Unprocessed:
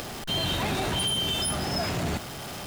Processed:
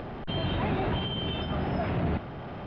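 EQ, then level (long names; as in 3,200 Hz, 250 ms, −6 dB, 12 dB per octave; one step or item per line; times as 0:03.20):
dynamic equaliser 3,000 Hz, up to +5 dB, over −41 dBFS, Q 1.2
high-frequency loss of the air 270 metres
head-to-tape spacing loss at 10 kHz 34 dB
+2.5 dB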